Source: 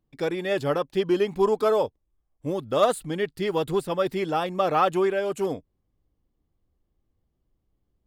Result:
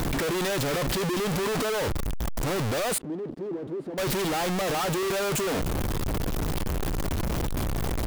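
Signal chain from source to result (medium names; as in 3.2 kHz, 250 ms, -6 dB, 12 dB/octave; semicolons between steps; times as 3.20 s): one-bit comparator; 2.98–3.98 s: band-pass filter 320 Hz, Q 2.4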